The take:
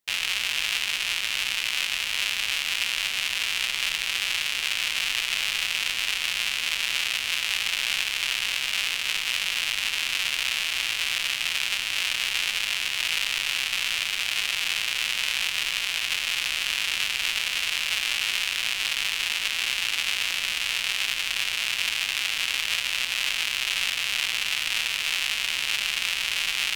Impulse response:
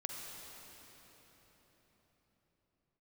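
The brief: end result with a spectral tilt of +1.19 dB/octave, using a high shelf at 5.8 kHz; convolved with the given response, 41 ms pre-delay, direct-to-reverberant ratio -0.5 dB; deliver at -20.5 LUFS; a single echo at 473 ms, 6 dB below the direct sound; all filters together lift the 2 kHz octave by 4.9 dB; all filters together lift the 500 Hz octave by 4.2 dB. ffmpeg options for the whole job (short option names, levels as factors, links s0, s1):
-filter_complex "[0:a]equalizer=f=500:t=o:g=5,equalizer=f=2000:t=o:g=5,highshelf=f=5800:g=7.5,aecho=1:1:473:0.501,asplit=2[s0][s1];[1:a]atrim=start_sample=2205,adelay=41[s2];[s1][s2]afir=irnorm=-1:irlink=0,volume=1.06[s3];[s0][s3]amix=inputs=2:normalize=0,volume=0.596"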